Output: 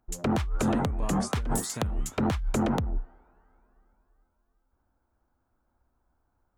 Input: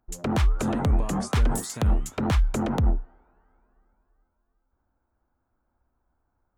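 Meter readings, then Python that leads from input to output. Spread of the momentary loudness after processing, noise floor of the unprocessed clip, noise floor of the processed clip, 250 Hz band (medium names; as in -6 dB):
4 LU, -77 dBFS, -76 dBFS, -0.5 dB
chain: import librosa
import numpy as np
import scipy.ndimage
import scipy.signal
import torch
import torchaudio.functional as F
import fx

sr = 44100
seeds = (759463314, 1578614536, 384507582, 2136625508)

y = fx.over_compress(x, sr, threshold_db=-24.0, ratio=-1.0)
y = y * 10.0 ** (-2.0 / 20.0)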